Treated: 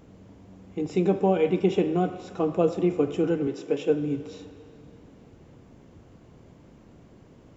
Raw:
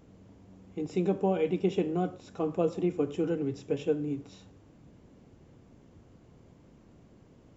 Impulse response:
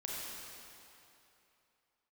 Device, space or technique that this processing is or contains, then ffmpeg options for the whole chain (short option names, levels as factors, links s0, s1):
filtered reverb send: -filter_complex "[0:a]asplit=2[s0][s1];[s1]highpass=f=480:p=1,lowpass=4600[s2];[1:a]atrim=start_sample=2205[s3];[s2][s3]afir=irnorm=-1:irlink=0,volume=0.316[s4];[s0][s4]amix=inputs=2:normalize=0,asettb=1/sr,asplit=3[s5][s6][s7];[s5]atrim=end=3.474[s8];[s6]atrim=start=3.47:end=3.9,asetpts=PTS-STARTPTS,afade=t=in:d=0.004:c=qsin,afade=t=out:st=0.426:d=0.004:c=qsin,highpass=230[s9];[s7]atrim=start=3.896[s10];[s8][s9]acrossfade=d=0.004:c1=hsin:c2=qsin[s11];[s11][s10]acrossfade=d=0.004:c1=qsin:c2=hsin,volume=1.68"